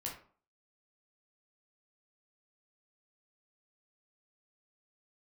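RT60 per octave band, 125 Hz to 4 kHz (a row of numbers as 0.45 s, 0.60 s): 0.45 s, 0.50 s, 0.45 s, 0.45 s, 0.35 s, 0.25 s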